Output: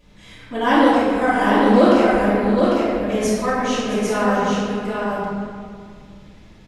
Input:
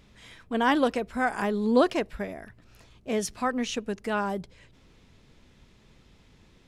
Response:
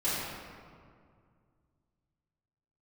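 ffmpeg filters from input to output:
-filter_complex "[0:a]aecho=1:1:668|800:0.188|0.631[a];[1:a]atrim=start_sample=2205[b];[a][b]afir=irnorm=-1:irlink=0,volume=-1dB"

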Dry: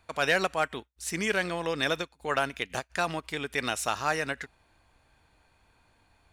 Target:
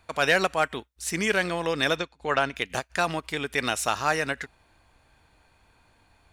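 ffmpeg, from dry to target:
-filter_complex "[0:a]asettb=1/sr,asplit=3[a][b][c];[a]atrim=end=1.954[d];[b]atrim=start=1.95:end=2.56,asetpts=PTS-STARTPTS,afade=t=in:d=0.004:c=qsin,afade=t=out:st=0.606:d=0.004:c=qsin,lowpass=6k[e];[c]atrim=start=2.556[f];[d][e]acrossfade=d=0.004:c1=hsin:c2=qsin[g];[g][f]acrossfade=d=0.004:c1=qsin:c2=hsin,volume=3.5dB"

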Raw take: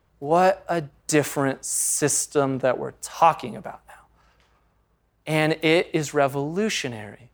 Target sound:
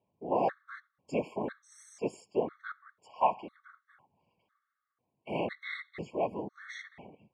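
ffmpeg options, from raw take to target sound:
-af "afftfilt=real='hypot(re,im)*cos(2*PI*random(0))':imag='hypot(re,im)*sin(2*PI*random(1))':win_size=512:overlap=0.75,highpass=160,lowpass=2.6k,afftfilt=real='re*gt(sin(2*PI*1*pts/sr)*(1-2*mod(floor(b*sr/1024/1100),2)),0)':imag='im*gt(sin(2*PI*1*pts/sr)*(1-2*mod(floor(b*sr/1024/1100),2)),0)':win_size=1024:overlap=0.75,volume=-4dB"

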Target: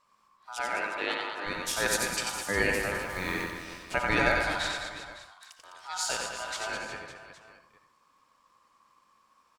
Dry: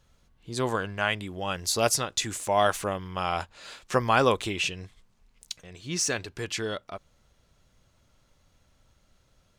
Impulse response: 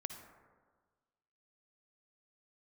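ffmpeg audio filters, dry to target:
-filter_complex "[0:a]asettb=1/sr,asplit=3[a][b][c];[a]atrim=end=4.714[d];[b]atrim=start=4.71:end=5.59,asetpts=PTS-STARTPTS,afade=t=in:d=0.004:c=qsin,afade=t=out:st=0.876:d=0.004:c=qsin,acompressor=threshold=-46dB:ratio=6[e];[c]atrim=start=5.586[f];[d][e]acrossfade=d=0.004:c1=hsin:c2=qsin[g];[g][f]acrossfade=d=0.004:c1=qsin:c2=hsin,aeval=exprs='val(0)*sin(2*PI*1100*n/s)':c=same,asplit=3[h][i][j];[h]afade=t=out:st=0.59:d=0.02[k];[i]highpass=300,lowpass=5.4k,afade=t=in:st=0.59:d=0.02,afade=t=out:st=1.45:d=0.02[l];[j]afade=t=in:st=1.45:d=0.02[m];[k][l][m]amix=inputs=3:normalize=0,asettb=1/sr,asplit=3[n][o][p];[n]atrim=end=3.004[q];[o]atrim=start=3:end=3.5,asetpts=PTS-STARTPTS,afade=t=in:d=0.004:c=qsin,afade=t=out:st=0.496:d=0.004:c=qsin,acrusher=bits=8:dc=4:mix=0:aa=0.000001[r];[p]atrim=start=3.496[s];[q][r]acrossfade=d=0.004:c1=hsin:c2=qsin[t];[t][s]acrossfade=d=0.004:c1=qsin:c2=hsin,aecho=1:1:90|207|359.1|556.8|813.9:0.631|0.398|0.251|0.158|0.1[u];[1:a]atrim=start_sample=2205,atrim=end_sample=6615,asetrate=41013,aresample=44100[v];[u][v]afir=irnorm=-1:irlink=0"

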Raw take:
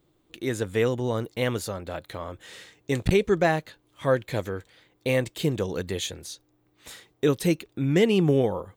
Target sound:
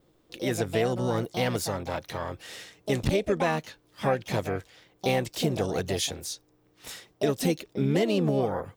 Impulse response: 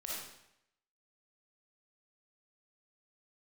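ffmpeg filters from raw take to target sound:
-filter_complex "[0:a]adynamicequalizer=threshold=0.00112:dfrequency=5400:dqfactor=4.6:tfrequency=5400:tqfactor=4.6:attack=5:release=100:ratio=0.375:range=3:mode=boostabove:tftype=bell,acompressor=threshold=-24dB:ratio=4,asplit=3[a][b][c];[b]asetrate=58866,aresample=44100,atempo=0.749154,volume=-16dB[d];[c]asetrate=66075,aresample=44100,atempo=0.66742,volume=-6dB[e];[a][d][e]amix=inputs=3:normalize=0,volume=1dB"

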